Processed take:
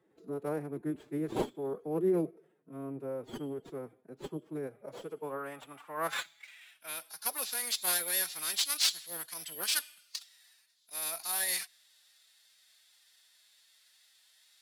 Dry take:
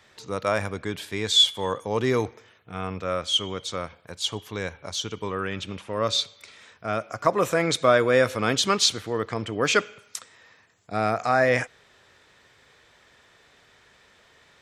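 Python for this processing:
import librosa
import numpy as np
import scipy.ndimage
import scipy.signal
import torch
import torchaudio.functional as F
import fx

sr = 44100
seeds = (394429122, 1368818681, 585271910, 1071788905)

y = fx.tracing_dist(x, sr, depth_ms=0.31)
y = (np.kron(y[::4], np.eye(4)[0]) * 4)[:len(y)]
y = fx.low_shelf(y, sr, hz=80.0, db=6.5)
y = fx.filter_sweep_bandpass(y, sr, from_hz=310.0, to_hz=4400.0, start_s=4.56, end_s=7.15, q=2.6)
y = fx.pitch_keep_formants(y, sr, semitones=6.5)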